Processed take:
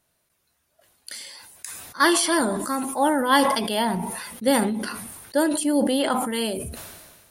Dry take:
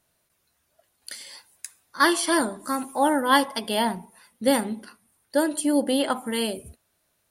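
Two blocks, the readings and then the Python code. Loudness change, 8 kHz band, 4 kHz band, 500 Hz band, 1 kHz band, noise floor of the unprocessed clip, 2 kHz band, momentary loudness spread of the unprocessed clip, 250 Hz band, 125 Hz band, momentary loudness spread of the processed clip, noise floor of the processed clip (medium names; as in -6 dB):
+1.5 dB, +3.5 dB, +1.5 dB, +1.5 dB, +1.5 dB, -72 dBFS, +1.0 dB, 19 LU, +2.0 dB, +7.0 dB, 18 LU, -71 dBFS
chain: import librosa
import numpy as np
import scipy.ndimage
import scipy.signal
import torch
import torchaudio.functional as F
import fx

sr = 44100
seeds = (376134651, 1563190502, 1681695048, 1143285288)

y = fx.sustainer(x, sr, db_per_s=38.0)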